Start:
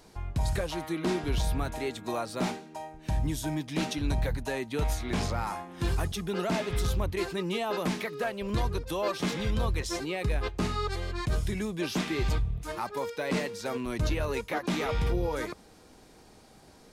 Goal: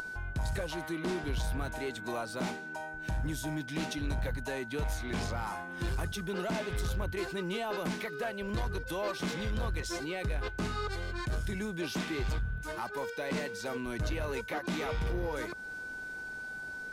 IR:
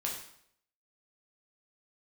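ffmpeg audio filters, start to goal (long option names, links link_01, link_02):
-af "aeval=exprs='val(0)+0.01*sin(2*PI*1500*n/s)':channel_layout=same,asoftclip=type=tanh:threshold=-23dB,acompressor=mode=upward:threshold=-33dB:ratio=2.5,volume=-3dB"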